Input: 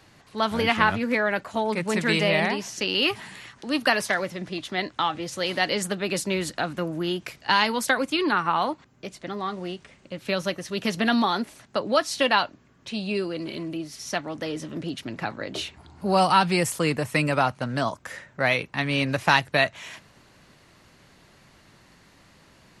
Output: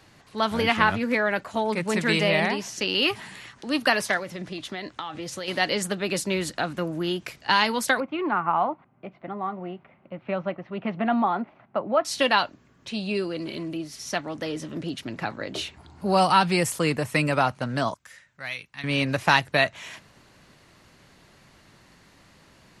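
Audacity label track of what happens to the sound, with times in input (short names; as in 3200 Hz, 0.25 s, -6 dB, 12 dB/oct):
4.170000	5.480000	compressor, threshold -29 dBFS
8.000000	12.050000	speaker cabinet 130–2100 Hz, peaks and dips at 280 Hz -4 dB, 450 Hz -7 dB, 730 Hz +5 dB, 1700 Hz -9 dB
17.940000	18.840000	passive tone stack bass-middle-treble 5-5-5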